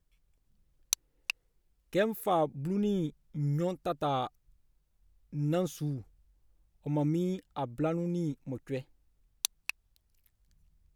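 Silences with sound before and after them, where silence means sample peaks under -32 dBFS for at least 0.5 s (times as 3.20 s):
1.30–1.95 s
4.27–5.35 s
5.96–6.87 s
8.79–9.45 s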